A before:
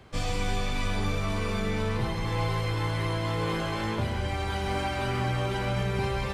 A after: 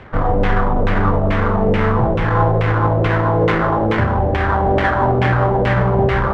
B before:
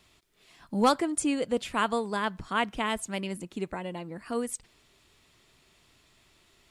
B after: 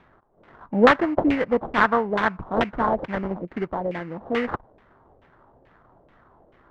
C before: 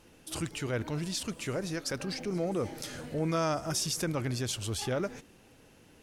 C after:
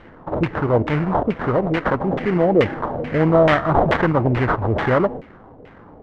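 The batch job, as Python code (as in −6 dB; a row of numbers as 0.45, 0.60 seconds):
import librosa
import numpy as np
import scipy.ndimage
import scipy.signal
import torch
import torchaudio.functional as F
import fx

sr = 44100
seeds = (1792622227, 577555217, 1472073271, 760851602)

y = fx.sample_hold(x, sr, seeds[0], rate_hz=2500.0, jitter_pct=20)
y = fx.filter_lfo_lowpass(y, sr, shape='saw_down', hz=2.3, low_hz=510.0, high_hz=2500.0, q=2.2)
y = librosa.util.normalize(y) * 10.0 ** (-2 / 20.0)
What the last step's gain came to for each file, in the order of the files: +12.5, +5.0, +13.5 decibels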